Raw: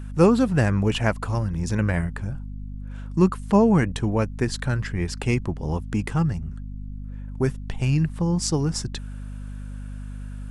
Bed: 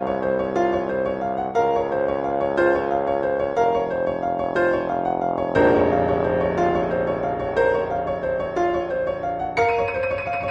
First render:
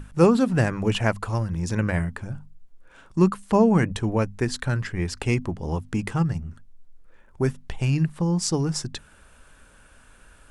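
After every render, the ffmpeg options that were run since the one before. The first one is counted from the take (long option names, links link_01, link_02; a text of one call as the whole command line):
ffmpeg -i in.wav -af "bandreject=frequency=50:width_type=h:width=6,bandreject=frequency=100:width_type=h:width=6,bandreject=frequency=150:width_type=h:width=6,bandreject=frequency=200:width_type=h:width=6,bandreject=frequency=250:width_type=h:width=6" out.wav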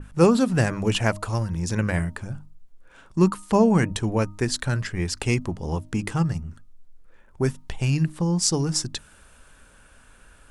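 ffmpeg -i in.wav -af "bandreject=frequency=309.7:width_type=h:width=4,bandreject=frequency=619.4:width_type=h:width=4,bandreject=frequency=929.1:width_type=h:width=4,bandreject=frequency=1238.8:width_type=h:width=4,adynamicequalizer=threshold=0.00794:dfrequency=3300:dqfactor=0.7:tfrequency=3300:tqfactor=0.7:attack=5:release=100:ratio=0.375:range=3:mode=boostabove:tftype=highshelf" out.wav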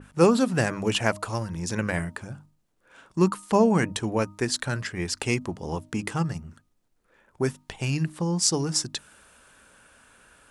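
ffmpeg -i in.wav -af "highpass=frequency=210:poles=1" out.wav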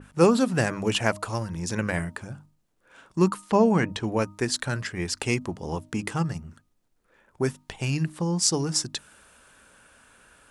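ffmpeg -i in.wav -filter_complex "[0:a]asettb=1/sr,asplit=3[link_01][link_02][link_03];[link_01]atrim=end=3.414[link_04];[link_02]atrim=start=3.41:end=4.08,asetpts=PTS-STARTPTS,afade=type=in:duration=0.004:curve=qsin,afade=type=out:start_time=0.666:duration=0.004:curve=qsin,acrossover=split=5700[link_05][link_06];[link_06]acompressor=threshold=-54dB:ratio=4:attack=1:release=60[link_07];[link_05][link_07]amix=inputs=2:normalize=0[link_08];[link_03]atrim=start=4.076[link_09];[link_04][link_08]acrossfade=duration=0.004:curve1=hsin:curve2=qsin[link_10];[link_10][link_09]acrossfade=duration=0.004:curve1=qsin:curve2=hsin" out.wav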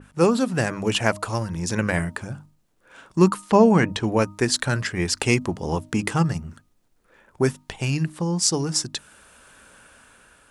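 ffmpeg -i in.wav -af "dynaudnorm=framelen=250:gausssize=7:maxgain=6dB" out.wav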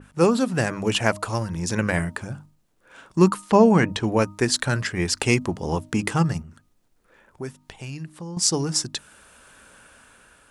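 ffmpeg -i in.wav -filter_complex "[0:a]asettb=1/sr,asplit=3[link_01][link_02][link_03];[link_01]atrim=end=6.424[link_04];[link_02]atrim=start=6.42:end=8.37,asetpts=PTS-STARTPTS,afade=type=in:duration=0.004:curve=qsin,afade=type=out:start_time=1.946:duration=0.004:curve=qsin,acompressor=threshold=-51dB:ratio=1.5:attack=3.2:release=140:knee=1:detection=peak[link_05];[link_03]atrim=start=8.366[link_06];[link_04][link_05]acrossfade=duration=0.004:curve1=hsin:curve2=qsin[link_07];[link_07][link_06]acrossfade=duration=0.004:curve1=qsin:curve2=hsin" out.wav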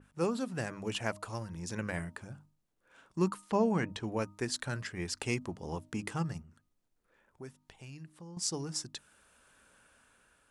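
ffmpeg -i in.wav -af "volume=-13.5dB" out.wav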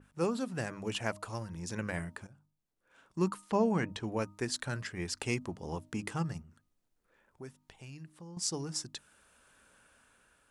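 ffmpeg -i in.wav -filter_complex "[0:a]asplit=2[link_01][link_02];[link_01]atrim=end=2.27,asetpts=PTS-STARTPTS,afade=type=out:start_time=2.266:duration=0.004:curve=hsin:silence=0.211349[link_03];[link_02]atrim=start=2.27,asetpts=PTS-STARTPTS,afade=type=in:duration=1.08:silence=0.211349[link_04];[link_03][link_04]concat=n=2:v=0:a=1" out.wav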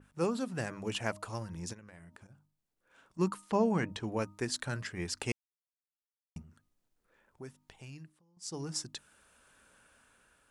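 ffmpeg -i in.wav -filter_complex "[0:a]asplit=3[link_01][link_02][link_03];[link_01]afade=type=out:start_time=1.72:duration=0.02[link_04];[link_02]acompressor=threshold=-50dB:ratio=8:attack=3.2:release=140:knee=1:detection=peak,afade=type=in:start_time=1.72:duration=0.02,afade=type=out:start_time=3.18:duration=0.02[link_05];[link_03]afade=type=in:start_time=3.18:duration=0.02[link_06];[link_04][link_05][link_06]amix=inputs=3:normalize=0,asplit=5[link_07][link_08][link_09][link_10][link_11];[link_07]atrim=end=5.32,asetpts=PTS-STARTPTS,afade=type=out:start_time=5.316:duration=0.004:curve=hsin[link_12];[link_08]atrim=start=5.32:end=6.36,asetpts=PTS-STARTPTS,volume=0[link_13];[link_09]atrim=start=6.36:end=8.22,asetpts=PTS-STARTPTS,afade=type=in:duration=0.004:curve=hsin,afade=type=out:start_time=1.61:duration=0.25:silence=0.0794328[link_14];[link_10]atrim=start=8.22:end=8.39,asetpts=PTS-STARTPTS,volume=-22dB[link_15];[link_11]atrim=start=8.39,asetpts=PTS-STARTPTS,afade=type=in:duration=0.25:silence=0.0794328[link_16];[link_12][link_13][link_14][link_15][link_16]concat=n=5:v=0:a=1" out.wav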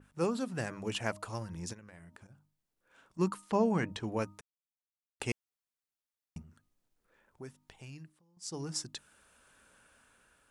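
ffmpeg -i in.wav -filter_complex "[0:a]asplit=3[link_01][link_02][link_03];[link_01]atrim=end=4.41,asetpts=PTS-STARTPTS,afade=type=out:start_time=4.406:duration=0.004:curve=hsin[link_04];[link_02]atrim=start=4.41:end=5.2,asetpts=PTS-STARTPTS,volume=0[link_05];[link_03]atrim=start=5.2,asetpts=PTS-STARTPTS,afade=type=in:duration=0.004:curve=hsin[link_06];[link_04][link_05][link_06]concat=n=3:v=0:a=1" out.wav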